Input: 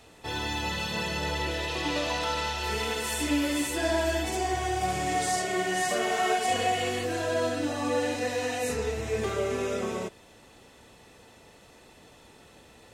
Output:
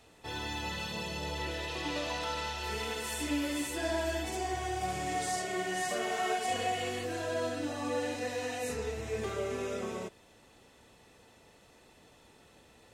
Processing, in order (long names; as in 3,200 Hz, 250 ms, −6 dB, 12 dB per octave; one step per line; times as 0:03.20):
0:00.92–0:01.38: parametric band 1,600 Hz −6.5 dB 0.73 octaves
level −6 dB